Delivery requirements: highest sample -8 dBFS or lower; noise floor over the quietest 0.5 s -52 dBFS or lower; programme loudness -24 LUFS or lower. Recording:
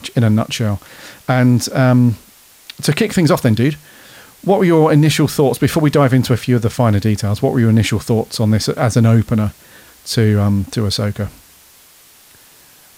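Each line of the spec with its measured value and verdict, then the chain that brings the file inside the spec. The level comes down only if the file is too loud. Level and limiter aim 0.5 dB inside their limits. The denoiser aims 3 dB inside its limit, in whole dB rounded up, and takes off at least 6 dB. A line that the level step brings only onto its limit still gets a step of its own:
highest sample -2.5 dBFS: fail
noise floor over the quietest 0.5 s -46 dBFS: fail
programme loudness -15.0 LUFS: fail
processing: gain -9.5 dB

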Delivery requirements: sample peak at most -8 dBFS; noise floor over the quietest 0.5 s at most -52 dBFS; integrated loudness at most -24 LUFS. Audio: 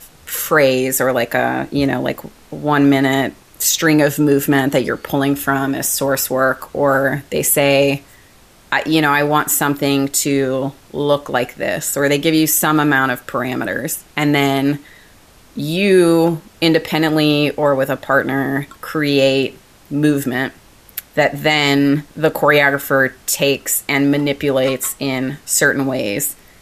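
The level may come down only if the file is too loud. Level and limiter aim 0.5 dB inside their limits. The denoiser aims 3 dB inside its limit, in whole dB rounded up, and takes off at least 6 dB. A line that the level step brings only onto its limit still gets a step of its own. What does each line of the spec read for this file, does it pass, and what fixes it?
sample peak -1.5 dBFS: fail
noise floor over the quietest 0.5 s -47 dBFS: fail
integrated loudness -16.0 LUFS: fail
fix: gain -8.5 dB

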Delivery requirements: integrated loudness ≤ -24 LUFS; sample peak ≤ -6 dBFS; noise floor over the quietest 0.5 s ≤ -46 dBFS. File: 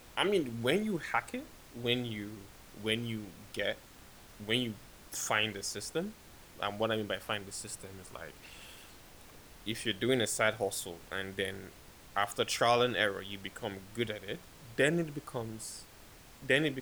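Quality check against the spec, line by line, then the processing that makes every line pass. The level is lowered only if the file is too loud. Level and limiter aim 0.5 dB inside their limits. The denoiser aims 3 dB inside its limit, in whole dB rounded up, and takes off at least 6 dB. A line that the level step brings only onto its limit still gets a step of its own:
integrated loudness -34.0 LUFS: OK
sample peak -12.5 dBFS: OK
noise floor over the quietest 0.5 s -55 dBFS: OK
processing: none

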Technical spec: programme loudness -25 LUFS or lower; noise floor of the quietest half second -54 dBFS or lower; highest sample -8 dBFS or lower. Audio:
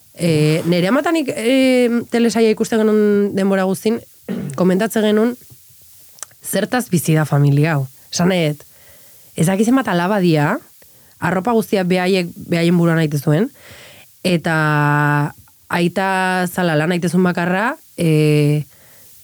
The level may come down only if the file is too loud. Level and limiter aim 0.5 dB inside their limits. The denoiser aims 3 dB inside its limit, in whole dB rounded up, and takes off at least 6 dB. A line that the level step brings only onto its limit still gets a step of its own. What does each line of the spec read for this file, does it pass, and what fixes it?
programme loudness -16.5 LUFS: fail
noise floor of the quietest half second -47 dBFS: fail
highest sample -4.5 dBFS: fail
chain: gain -9 dB

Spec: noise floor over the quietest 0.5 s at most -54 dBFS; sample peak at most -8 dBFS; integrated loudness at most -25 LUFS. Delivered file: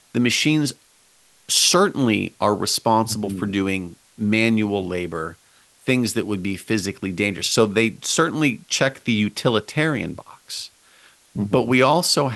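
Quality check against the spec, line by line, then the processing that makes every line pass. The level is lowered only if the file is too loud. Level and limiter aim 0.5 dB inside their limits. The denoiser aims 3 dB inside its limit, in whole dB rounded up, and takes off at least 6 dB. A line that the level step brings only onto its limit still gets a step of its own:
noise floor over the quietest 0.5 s -56 dBFS: OK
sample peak -4.0 dBFS: fail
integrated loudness -20.5 LUFS: fail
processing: gain -5 dB

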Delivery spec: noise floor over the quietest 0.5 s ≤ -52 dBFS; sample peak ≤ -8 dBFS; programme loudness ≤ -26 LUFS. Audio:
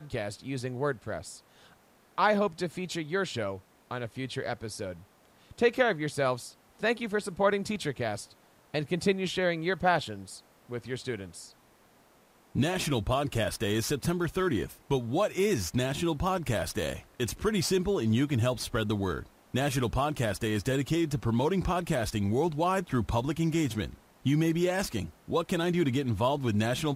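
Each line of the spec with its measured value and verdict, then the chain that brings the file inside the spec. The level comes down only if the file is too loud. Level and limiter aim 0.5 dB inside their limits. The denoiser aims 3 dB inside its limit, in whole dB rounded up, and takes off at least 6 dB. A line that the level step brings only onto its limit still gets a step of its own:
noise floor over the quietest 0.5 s -61 dBFS: OK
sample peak -10.5 dBFS: OK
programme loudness -30.0 LUFS: OK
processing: none

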